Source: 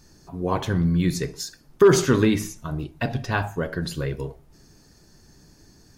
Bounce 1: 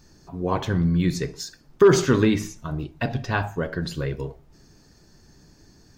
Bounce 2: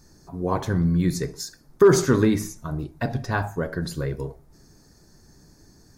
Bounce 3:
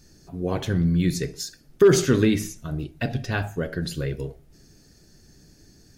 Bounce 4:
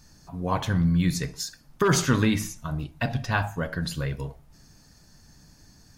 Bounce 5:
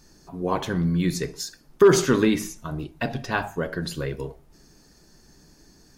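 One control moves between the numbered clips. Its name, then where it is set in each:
parametric band, centre frequency: 11,000, 2,900, 1,000, 380, 100 Hertz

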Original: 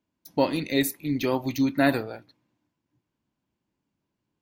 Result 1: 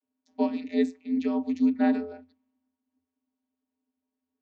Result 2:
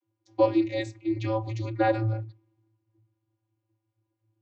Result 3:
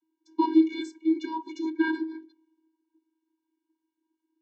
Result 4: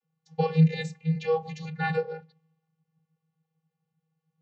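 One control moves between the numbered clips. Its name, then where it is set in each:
channel vocoder, frequency: 86, 110, 320, 160 Hertz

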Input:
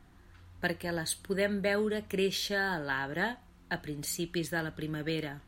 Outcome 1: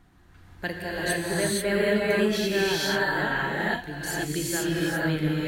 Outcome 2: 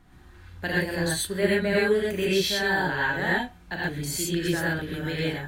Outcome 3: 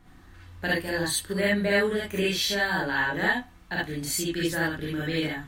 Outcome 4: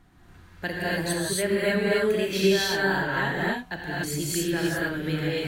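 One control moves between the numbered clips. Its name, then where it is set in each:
reverb whose tail is shaped and stops, gate: 510, 150, 90, 310 milliseconds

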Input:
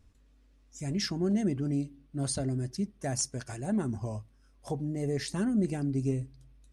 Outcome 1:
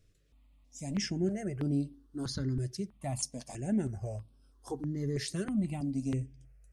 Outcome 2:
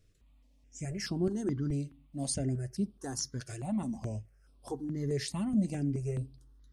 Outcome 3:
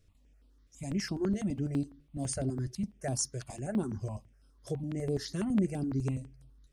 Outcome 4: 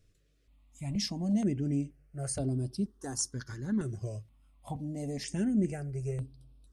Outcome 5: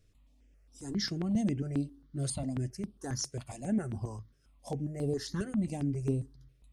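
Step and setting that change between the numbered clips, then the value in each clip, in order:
step-sequenced phaser, speed: 3.1, 4.7, 12, 2.1, 7.4 Hertz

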